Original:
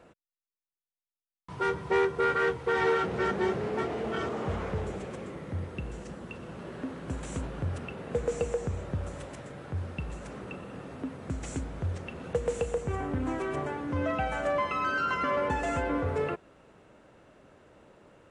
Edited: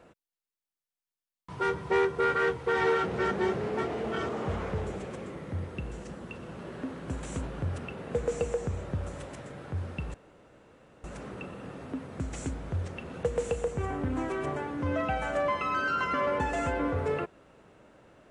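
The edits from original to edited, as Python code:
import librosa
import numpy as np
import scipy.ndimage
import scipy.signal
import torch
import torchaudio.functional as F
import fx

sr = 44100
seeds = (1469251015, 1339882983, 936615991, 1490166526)

y = fx.edit(x, sr, fx.insert_room_tone(at_s=10.14, length_s=0.9), tone=tone)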